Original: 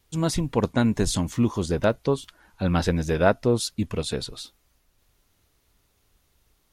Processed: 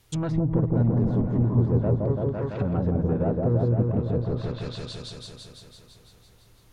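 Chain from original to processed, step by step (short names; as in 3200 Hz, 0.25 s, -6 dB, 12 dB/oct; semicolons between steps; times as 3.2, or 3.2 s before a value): compressor 3:1, threshold -27 dBFS, peak gain reduction 10.5 dB; low shelf 180 Hz -3 dB; soft clip -28 dBFS, distortion -12 dB; bell 120 Hz +13 dB 0.24 oct; on a send: repeats that get brighter 0.168 s, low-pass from 750 Hz, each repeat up 1 oct, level 0 dB; on the sum: treble ducked by the level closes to 740 Hz, closed at -26.5 dBFS; gain +5.5 dB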